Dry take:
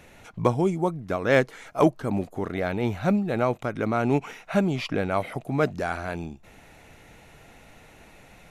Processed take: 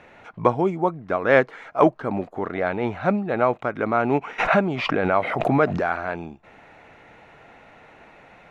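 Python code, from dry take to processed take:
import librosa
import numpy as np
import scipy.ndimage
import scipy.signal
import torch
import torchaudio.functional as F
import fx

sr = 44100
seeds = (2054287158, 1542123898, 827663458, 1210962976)

y = scipy.signal.sosfilt(scipy.signal.butter(2, 1400.0, 'lowpass', fs=sr, output='sos'), x)
y = fx.tilt_eq(y, sr, slope=3.5)
y = fx.pre_swell(y, sr, db_per_s=35.0, at=(4.38, 5.86), fade=0.02)
y = y * 10.0 ** (7.0 / 20.0)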